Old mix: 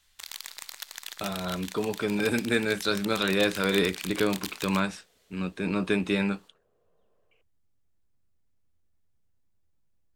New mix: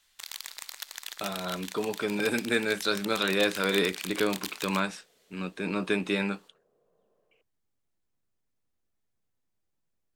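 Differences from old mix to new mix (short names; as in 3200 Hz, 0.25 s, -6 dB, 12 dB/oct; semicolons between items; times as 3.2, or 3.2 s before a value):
speech: add bell 84 Hz -6 dB 0.4 oct; second sound: add tilt shelf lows +5.5 dB, about 880 Hz; master: add low shelf 150 Hz -10.5 dB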